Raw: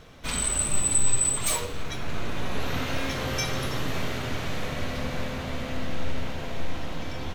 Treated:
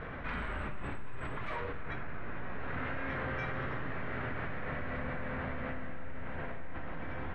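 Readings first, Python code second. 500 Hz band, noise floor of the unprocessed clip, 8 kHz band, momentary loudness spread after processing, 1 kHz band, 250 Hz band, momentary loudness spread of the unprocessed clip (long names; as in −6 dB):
−7.5 dB, −34 dBFS, below −40 dB, 7 LU, −5.0 dB, −8.0 dB, 13 LU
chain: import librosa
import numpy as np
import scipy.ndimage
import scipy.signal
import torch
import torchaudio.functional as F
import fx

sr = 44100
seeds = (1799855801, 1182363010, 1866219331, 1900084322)

y = fx.ladder_lowpass(x, sr, hz=2100.0, resonance_pct=45)
y = fx.env_flatten(y, sr, amount_pct=70)
y = y * librosa.db_to_amplitude(-7.0)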